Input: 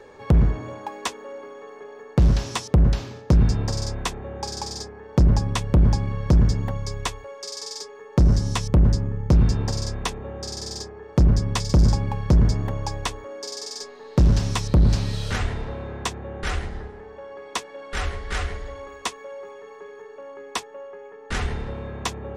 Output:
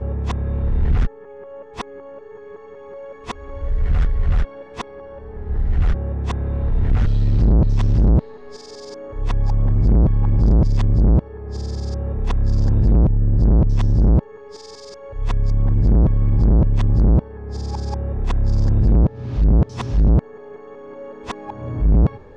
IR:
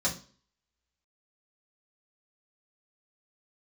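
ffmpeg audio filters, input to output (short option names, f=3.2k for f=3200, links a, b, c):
-af "areverse,aemphasis=mode=reproduction:type=riaa,asoftclip=type=tanh:threshold=-8dB,acontrast=75,volume=-7dB"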